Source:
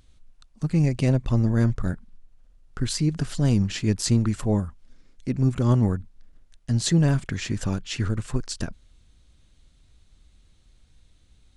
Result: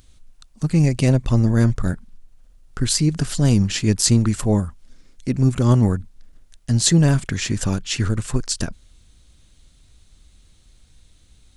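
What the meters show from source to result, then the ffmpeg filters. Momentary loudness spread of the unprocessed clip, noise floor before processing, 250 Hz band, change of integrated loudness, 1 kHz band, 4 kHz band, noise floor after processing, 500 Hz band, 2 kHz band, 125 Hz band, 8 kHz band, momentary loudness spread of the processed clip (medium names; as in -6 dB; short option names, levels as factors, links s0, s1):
12 LU, -58 dBFS, +4.5 dB, +5.0 dB, +4.5 dB, +7.5 dB, -54 dBFS, +4.5 dB, +5.5 dB, +4.5 dB, +10.0 dB, 11 LU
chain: -af "highshelf=f=5800:g=9,volume=1.68"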